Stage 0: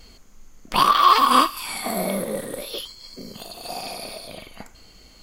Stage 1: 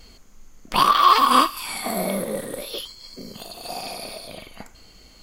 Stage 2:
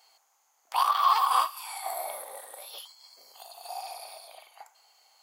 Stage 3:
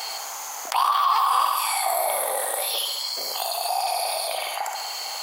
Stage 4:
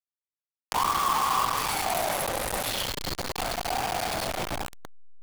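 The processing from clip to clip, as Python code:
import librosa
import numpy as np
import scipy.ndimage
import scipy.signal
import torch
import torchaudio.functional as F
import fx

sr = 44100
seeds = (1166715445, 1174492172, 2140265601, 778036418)

y1 = x
y2 = fx.ladder_highpass(y1, sr, hz=740.0, resonance_pct=70)
y2 = fx.high_shelf(y2, sr, hz=7000.0, db=9.0)
y2 = y2 * librosa.db_to_amplitude(-2.0)
y3 = fx.echo_feedback(y2, sr, ms=68, feedback_pct=52, wet_db=-10.0)
y3 = fx.env_flatten(y3, sr, amount_pct=70)
y4 = fx.delta_hold(y3, sr, step_db=-19.5)
y4 = y4 * librosa.db_to_amplitude(-4.0)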